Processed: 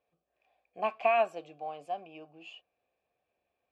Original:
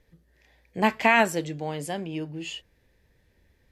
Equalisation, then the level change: vowel filter a; +2.0 dB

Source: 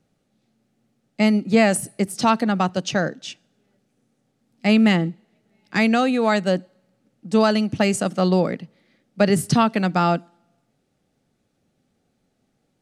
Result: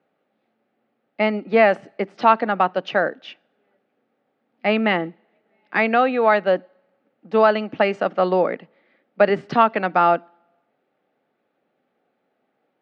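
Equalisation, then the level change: BPF 460–2500 Hz; air absorption 190 m; +6.0 dB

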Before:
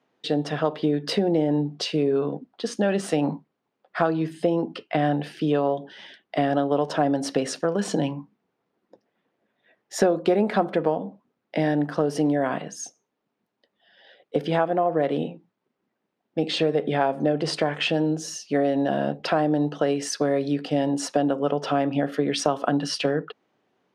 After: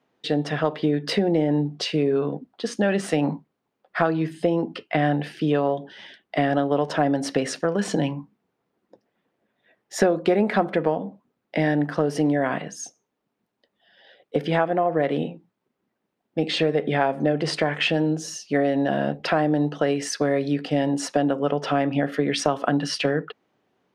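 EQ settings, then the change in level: low shelf 88 Hz +9 dB; dynamic EQ 2000 Hz, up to +6 dB, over -46 dBFS, Q 1.9; 0.0 dB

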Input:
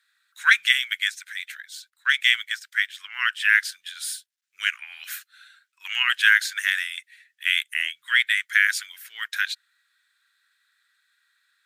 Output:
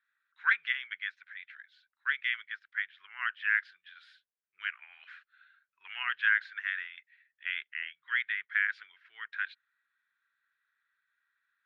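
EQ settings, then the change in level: dynamic EQ 460 Hz, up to +6 dB, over -40 dBFS, Q 0.93; air absorption 360 m; tape spacing loss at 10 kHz 26 dB; -2.5 dB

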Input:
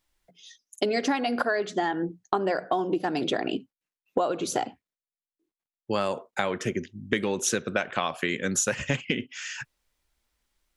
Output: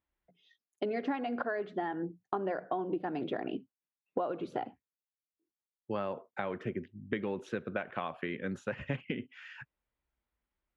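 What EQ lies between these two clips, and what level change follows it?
HPF 41 Hz; air absorption 480 m; -6.5 dB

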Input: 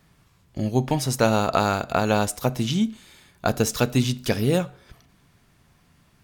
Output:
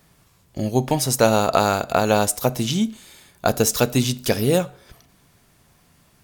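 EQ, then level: bell 570 Hz +4.5 dB 1.6 oct; high shelf 5200 Hz +10 dB; 0.0 dB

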